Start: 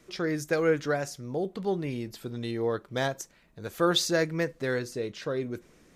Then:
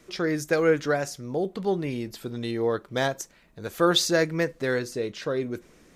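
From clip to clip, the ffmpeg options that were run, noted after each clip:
-af "equalizer=f=120:w=1.5:g=-2.5,volume=3.5dB"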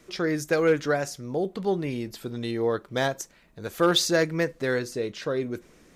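-af "asoftclip=type=hard:threshold=-13.5dB"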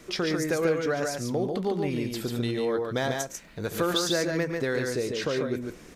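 -filter_complex "[0:a]acompressor=threshold=-34dB:ratio=3,asplit=2[a][b];[b]aecho=0:1:110.8|142.9:0.251|0.631[c];[a][c]amix=inputs=2:normalize=0,volume=6dB"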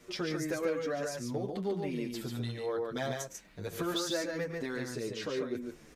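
-filter_complex "[0:a]asplit=2[a][b];[b]adelay=8.1,afreqshift=-1.1[c];[a][c]amix=inputs=2:normalize=1,volume=-4.5dB"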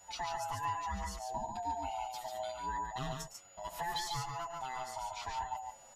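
-af "afftfilt=real='real(if(lt(b,1008),b+24*(1-2*mod(floor(b/24),2)),b),0)':imag='imag(if(lt(b,1008),b+24*(1-2*mod(floor(b/24),2)),b),0)':win_size=2048:overlap=0.75,aeval=exprs='val(0)+0.002*sin(2*PI*6900*n/s)':c=same,volume=-4dB"

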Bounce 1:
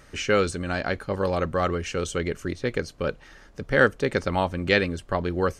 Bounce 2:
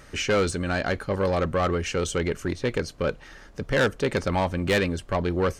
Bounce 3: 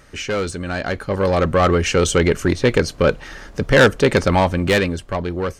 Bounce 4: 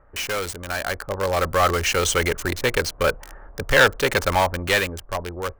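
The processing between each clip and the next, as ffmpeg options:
-af "asoftclip=type=tanh:threshold=-19.5dB,volume=3dB"
-af "dynaudnorm=f=240:g=11:m=10.5dB"
-filter_complex "[0:a]acrossover=split=760|1200[a][b][c];[a]equalizer=f=210:t=o:w=2.5:g=-13.5[d];[c]acrusher=bits=4:mix=0:aa=0.000001[e];[d][b][e]amix=inputs=3:normalize=0"

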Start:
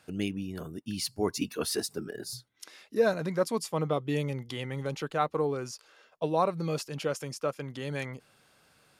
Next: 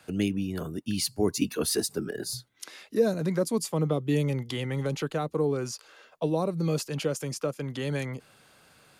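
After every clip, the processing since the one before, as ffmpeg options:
-filter_complex "[0:a]bandreject=f=5.4k:w=19,acrossover=split=190|450|4800[a][b][c][d];[c]acompressor=threshold=-40dB:ratio=6[e];[a][b][e][d]amix=inputs=4:normalize=0,volume=5.5dB"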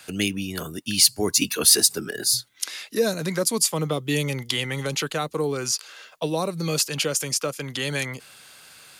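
-af "tiltshelf=f=1.3k:g=-7.5,volume=7dB"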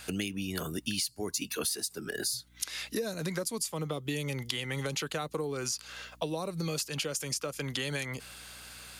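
-af "aeval=exprs='val(0)+0.00141*(sin(2*PI*60*n/s)+sin(2*PI*2*60*n/s)/2+sin(2*PI*3*60*n/s)/3+sin(2*PI*4*60*n/s)/4+sin(2*PI*5*60*n/s)/5)':c=same,acompressor=threshold=-30dB:ratio=12"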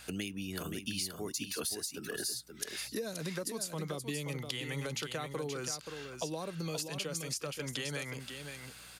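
-af "aecho=1:1:527:0.447,volume=-4.5dB"

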